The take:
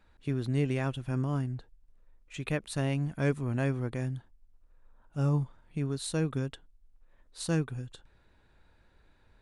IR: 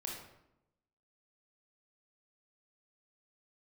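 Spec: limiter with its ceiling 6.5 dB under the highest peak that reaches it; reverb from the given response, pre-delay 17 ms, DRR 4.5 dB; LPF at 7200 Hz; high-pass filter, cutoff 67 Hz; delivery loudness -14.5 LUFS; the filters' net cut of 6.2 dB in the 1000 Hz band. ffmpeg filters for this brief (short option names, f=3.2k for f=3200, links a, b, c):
-filter_complex "[0:a]highpass=67,lowpass=7.2k,equalizer=f=1k:t=o:g=-9,alimiter=level_in=1dB:limit=-24dB:level=0:latency=1,volume=-1dB,asplit=2[a][b];[1:a]atrim=start_sample=2205,adelay=17[c];[b][c]afir=irnorm=-1:irlink=0,volume=-4dB[d];[a][d]amix=inputs=2:normalize=0,volume=20.5dB"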